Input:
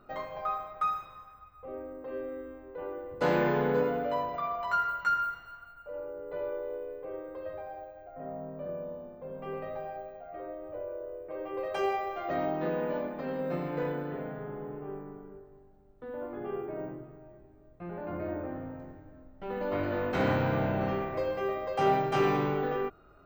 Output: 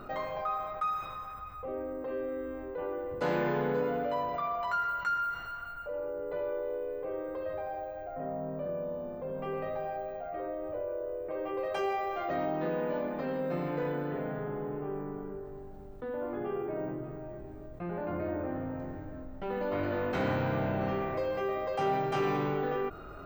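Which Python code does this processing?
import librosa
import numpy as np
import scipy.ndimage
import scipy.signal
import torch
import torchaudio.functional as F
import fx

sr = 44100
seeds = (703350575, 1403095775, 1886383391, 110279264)

y = fx.env_flatten(x, sr, amount_pct=50)
y = y * librosa.db_to_amplitude(-5.0)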